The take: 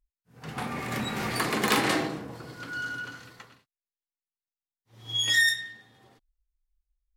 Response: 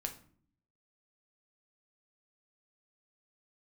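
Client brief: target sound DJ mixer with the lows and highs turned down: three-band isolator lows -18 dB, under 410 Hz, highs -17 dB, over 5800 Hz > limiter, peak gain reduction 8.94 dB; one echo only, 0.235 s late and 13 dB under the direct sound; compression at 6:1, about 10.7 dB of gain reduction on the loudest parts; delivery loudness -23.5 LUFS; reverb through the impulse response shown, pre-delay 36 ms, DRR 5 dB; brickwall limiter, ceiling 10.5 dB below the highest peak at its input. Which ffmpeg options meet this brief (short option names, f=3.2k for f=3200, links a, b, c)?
-filter_complex "[0:a]acompressor=threshold=-30dB:ratio=6,alimiter=level_in=4dB:limit=-24dB:level=0:latency=1,volume=-4dB,aecho=1:1:235:0.224,asplit=2[a][b];[1:a]atrim=start_sample=2205,adelay=36[c];[b][c]afir=irnorm=-1:irlink=0,volume=-4.5dB[d];[a][d]amix=inputs=2:normalize=0,acrossover=split=410 5800:gain=0.126 1 0.141[e][f][g];[e][f][g]amix=inputs=3:normalize=0,volume=18dB,alimiter=limit=-15.5dB:level=0:latency=1"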